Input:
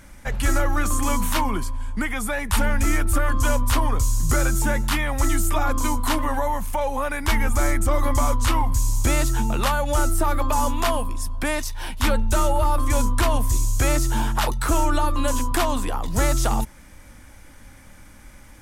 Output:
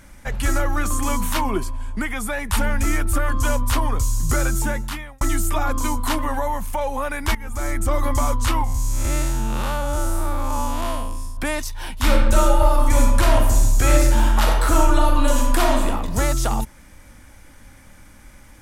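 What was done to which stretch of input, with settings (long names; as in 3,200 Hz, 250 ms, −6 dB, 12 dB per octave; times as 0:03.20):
0:01.42–0:01.98: hollow resonant body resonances 380/650/2,600 Hz, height 11 dB → 8 dB
0:04.60–0:05.21: fade out
0:07.35–0:07.89: fade in, from −18.5 dB
0:08.64–0:11.37: spectrum smeared in time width 203 ms
0:11.97–0:15.88: thrown reverb, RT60 1.1 s, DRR −0.5 dB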